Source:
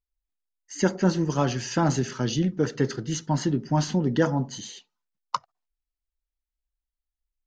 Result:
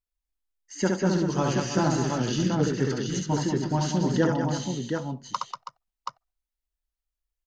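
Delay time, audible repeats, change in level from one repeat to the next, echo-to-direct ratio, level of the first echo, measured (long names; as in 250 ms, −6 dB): 68 ms, 4, repeats not evenly spaced, 0.5 dB, −3.5 dB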